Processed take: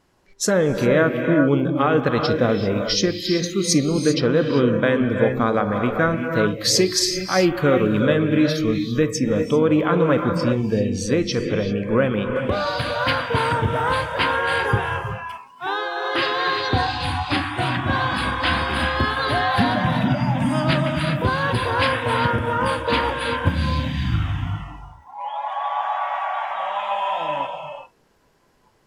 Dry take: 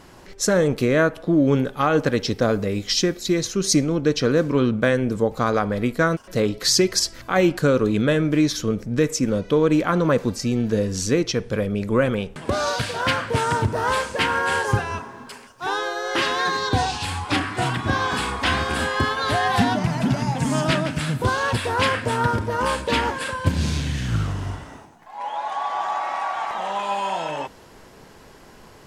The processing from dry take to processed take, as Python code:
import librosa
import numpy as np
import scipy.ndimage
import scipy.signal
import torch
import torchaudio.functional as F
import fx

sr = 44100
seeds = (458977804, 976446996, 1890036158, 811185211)

y = fx.rev_gated(x, sr, seeds[0], gate_ms=420, shape='rising', drr_db=4.0)
y = fx.noise_reduce_blind(y, sr, reduce_db=16)